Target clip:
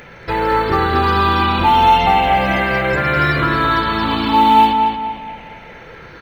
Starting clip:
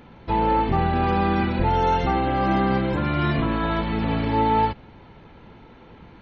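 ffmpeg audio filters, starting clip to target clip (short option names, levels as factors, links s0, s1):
-filter_complex "[0:a]afftfilt=real='re*pow(10,10/40*sin(2*PI*(0.53*log(max(b,1)*sr/1024/100)/log(2)-(-0.35)*(pts-256)/sr)))':imag='im*pow(10,10/40*sin(2*PI*(0.53*log(max(b,1)*sr/1024/100)/log(2)-(-0.35)*(pts-256)/sr)))':win_size=1024:overlap=0.75,tiltshelf=f=700:g=-7,asplit=2[s0][s1];[s1]acompressor=threshold=0.02:ratio=5,volume=0.794[s2];[s0][s2]amix=inputs=2:normalize=0,acrusher=bits=9:mode=log:mix=0:aa=0.000001,asplit=2[s3][s4];[s4]adelay=232,lowpass=f=3200:p=1,volume=0.596,asplit=2[s5][s6];[s6]adelay=232,lowpass=f=3200:p=1,volume=0.41,asplit=2[s7][s8];[s8]adelay=232,lowpass=f=3200:p=1,volume=0.41,asplit=2[s9][s10];[s10]adelay=232,lowpass=f=3200:p=1,volume=0.41,asplit=2[s11][s12];[s12]adelay=232,lowpass=f=3200:p=1,volume=0.41[s13];[s3][s5][s7][s9][s11][s13]amix=inputs=6:normalize=0,volume=1.5"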